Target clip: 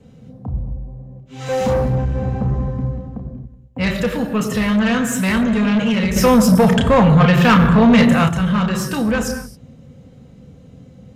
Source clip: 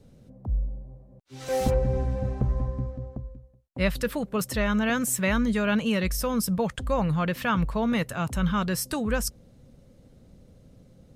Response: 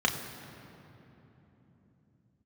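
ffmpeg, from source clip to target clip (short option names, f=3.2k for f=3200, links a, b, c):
-filter_complex "[1:a]atrim=start_sample=2205,afade=t=out:st=0.33:d=0.01,atrim=end_sample=14994[a];[0:a][a]afir=irnorm=-1:irlink=0,asoftclip=type=tanh:threshold=-11dB,asettb=1/sr,asplit=3[b][c][d];[b]atrim=end=6.164[e];[c]atrim=start=6.16:end=8.29,asetpts=PTS-STARTPTS,afade=t=in:d=0.004:c=qsin,afade=t=out:st=2.126:d=0.004:c=qsin,acontrast=90[f];[d]atrim=start=8.286[g];[e][f]acrossfade=d=0.004:c1=hsin:c2=qsin[h];[h][g]acrossfade=d=0.004:c1=qsin:c2=hsin,volume=-1dB"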